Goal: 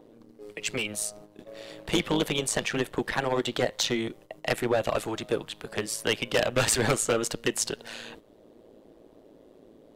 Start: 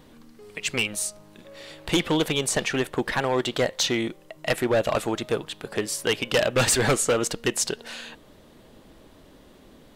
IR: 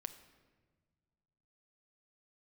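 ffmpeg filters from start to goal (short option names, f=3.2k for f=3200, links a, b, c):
-filter_complex "[0:a]agate=range=-10dB:threshold=-46dB:ratio=16:detection=peak,acrossover=split=350|510|6700[a][b][c][d];[b]acompressor=mode=upward:threshold=-34dB:ratio=2.5[e];[a][e][c][d]amix=inputs=4:normalize=0,tremolo=f=110:d=0.71"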